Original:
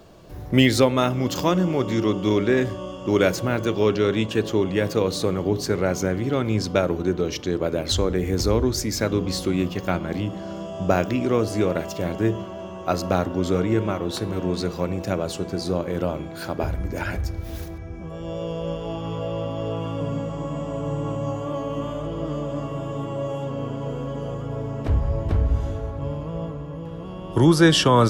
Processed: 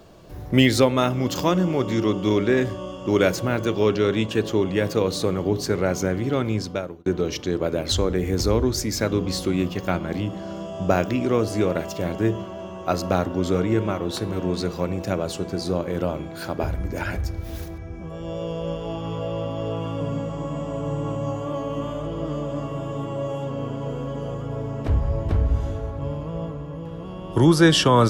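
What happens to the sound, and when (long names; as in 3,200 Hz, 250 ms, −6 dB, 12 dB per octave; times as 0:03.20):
0:06.42–0:07.06: fade out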